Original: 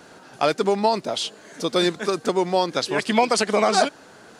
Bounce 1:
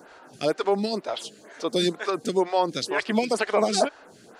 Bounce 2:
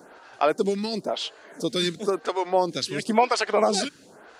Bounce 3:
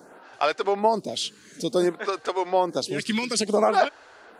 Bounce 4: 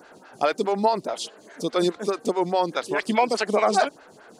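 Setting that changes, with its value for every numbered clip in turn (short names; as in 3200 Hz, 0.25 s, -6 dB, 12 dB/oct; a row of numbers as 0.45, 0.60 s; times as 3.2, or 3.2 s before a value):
photocell phaser, rate: 2.1, 0.97, 0.56, 4.8 Hz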